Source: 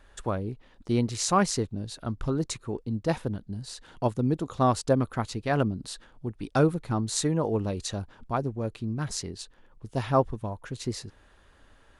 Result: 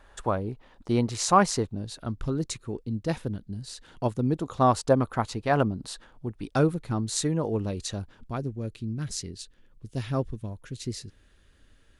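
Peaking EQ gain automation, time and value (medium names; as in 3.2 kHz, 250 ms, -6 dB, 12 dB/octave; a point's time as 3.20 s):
peaking EQ 880 Hz 1.5 oct
1.59 s +5.5 dB
2.31 s -5.5 dB
3.65 s -5.5 dB
4.86 s +5 dB
5.77 s +5 dB
6.78 s -3.5 dB
7.96 s -3.5 dB
8.68 s -13.5 dB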